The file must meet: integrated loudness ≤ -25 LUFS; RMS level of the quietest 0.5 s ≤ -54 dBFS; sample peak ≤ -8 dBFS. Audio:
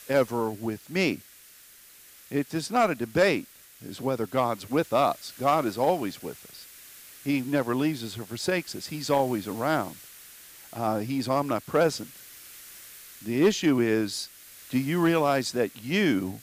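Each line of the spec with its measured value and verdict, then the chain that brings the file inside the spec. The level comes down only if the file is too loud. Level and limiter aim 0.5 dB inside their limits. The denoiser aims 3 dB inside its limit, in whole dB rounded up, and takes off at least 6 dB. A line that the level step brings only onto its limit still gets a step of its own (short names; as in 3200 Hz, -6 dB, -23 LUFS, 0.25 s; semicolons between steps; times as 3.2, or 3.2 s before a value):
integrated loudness -27.0 LUFS: OK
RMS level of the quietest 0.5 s -52 dBFS: fail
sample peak -11.5 dBFS: OK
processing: denoiser 6 dB, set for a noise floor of -52 dBFS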